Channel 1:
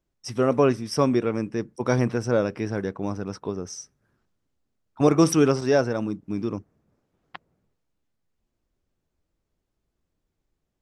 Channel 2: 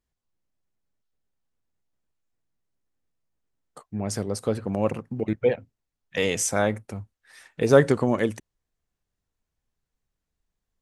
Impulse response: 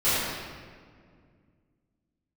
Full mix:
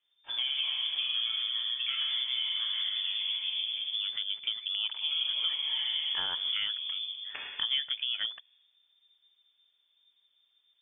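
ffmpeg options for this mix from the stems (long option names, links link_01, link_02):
-filter_complex "[0:a]acompressor=threshold=-20dB:ratio=6,volume=-4dB,asplit=2[link_01][link_02];[link_02]volume=-10dB[link_03];[1:a]volume=0.5dB,asplit=2[link_04][link_05];[link_05]apad=whole_len=476869[link_06];[link_01][link_06]sidechaincompress=threshold=-29dB:ratio=8:attack=16:release=808[link_07];[2:a]atrim=start_sample=2205[link_08];[link_03][link_08]afir=irnorm=-1:irlink=0[link_09];[link_07][link_04][link_09]amix=inputs=3:normalize=0,lowpass=frequency=3100:width_type=q:width=0.5098,lowpass=frequency=3100:width_type=q:width=0.6013,lowpass=frequency=3100:width_type=q:width=0.9,lowpass=frequency=3100:width_type=q:width=2.563,afreqshift=-3600,acompressor=threshold=-31dB:ratio=4"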